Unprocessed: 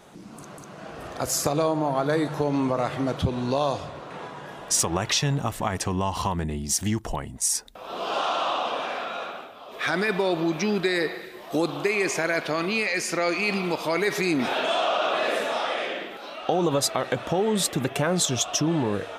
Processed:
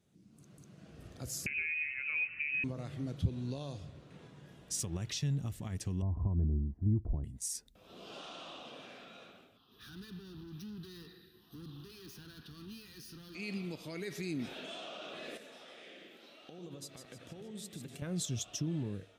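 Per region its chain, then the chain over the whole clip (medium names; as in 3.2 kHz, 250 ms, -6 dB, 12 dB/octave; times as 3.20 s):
1.46–2.64 s: peaking EQ 330 Hz +10.5 dB 0.98 oct + frequency inversion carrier 2.8 kHz
6.02–7.24 s: low-pass 1 kHz 24 dB/octave + tilt EQ -2 dB/octave + comb 3 ms, depth 32%
9.57–13.35 s: overload inside the chain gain 29.5 dB + treble shelf 7.2 kHz +5 dB + static phaser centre 2.2 kHz, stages 6
15.37–18.02 s: high-pass 240 Hz 6 dB/octave + compression 3:1, threshold -31 dBFS + two-band feedback delay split 2.9 kHz, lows 92 ms, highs 153 ms, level -7 dB
whole clip: high-pass 70 Hz; amplifier tone stack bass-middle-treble 10-0-1; level rider gain up to 8 dB; trim -2 dB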